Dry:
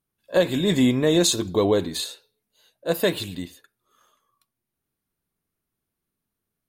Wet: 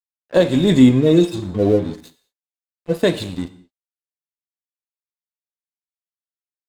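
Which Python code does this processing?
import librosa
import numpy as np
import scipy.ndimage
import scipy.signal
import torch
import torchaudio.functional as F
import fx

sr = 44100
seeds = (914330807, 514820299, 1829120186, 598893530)

y = fx.hpss_only(x, sr, part='harmonic', at=(0.89, 2.94))
y = scipy.signal.sosfilt(scipy.signal.butter(4, 9900.0, 'lowpass', fs=sr, output='sos'), y)
y = fx.low_shelf(y, sr, hz=460.0, db=7.5)
y = np.sign(y) * np.maximum(np.abs(y) - 10.0 ** (-37.5 / 20.0), 0.0)
y = fx.rev_gated(y, sr, seeds[0], gate_ms=240, shape='falling', drr_db=11.5)
y = F.gain(torch.from_numpy(y), 2.0).numpy()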